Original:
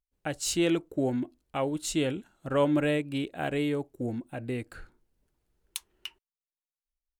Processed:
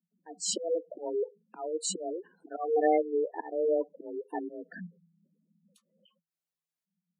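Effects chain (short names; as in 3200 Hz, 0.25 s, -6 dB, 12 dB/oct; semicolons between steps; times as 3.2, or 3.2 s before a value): auto swell 0.301 s; frequency shift +160 Hz; spectral gate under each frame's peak -10 dB strong; gain +3.5 dB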